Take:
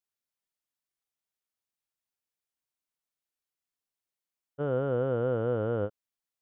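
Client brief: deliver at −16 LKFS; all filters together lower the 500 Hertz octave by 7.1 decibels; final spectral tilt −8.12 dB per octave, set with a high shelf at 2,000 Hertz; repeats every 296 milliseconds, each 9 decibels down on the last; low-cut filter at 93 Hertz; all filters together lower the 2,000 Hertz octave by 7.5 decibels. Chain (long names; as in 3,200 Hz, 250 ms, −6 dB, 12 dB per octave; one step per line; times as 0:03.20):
high-pass filter 93 Hz
parametric band 500 Hz −7 dB
high-shelf EQ 2,000 Hz −8.5 dB
parametric band 2,000 Hz −7 dB
repeating echo 296 ms, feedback 35%, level −9 dB
level +19 dB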